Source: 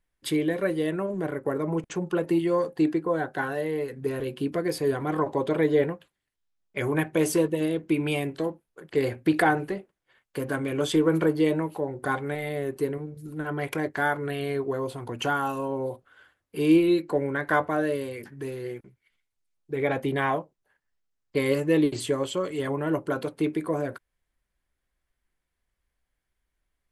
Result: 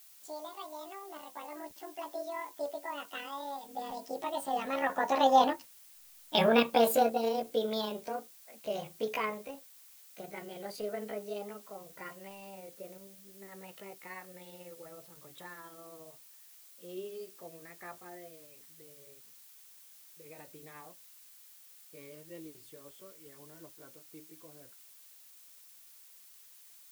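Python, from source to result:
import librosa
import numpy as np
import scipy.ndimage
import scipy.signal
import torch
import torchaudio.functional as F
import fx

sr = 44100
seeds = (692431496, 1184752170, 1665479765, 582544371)

y = fx.pitch_glide(x, sr, semitones=11.0, runs='ending unshifted')
y = fx.doppler_pass(y, sr, speed_mps=24, closest_m=9.2, pass_at_s=6.05)
y = fx.dmg_noise_colour(y, sr, seeds[0], colour='blue', level_db=-63.0)
y = y * 10.0 ** (6.5 / 20.0)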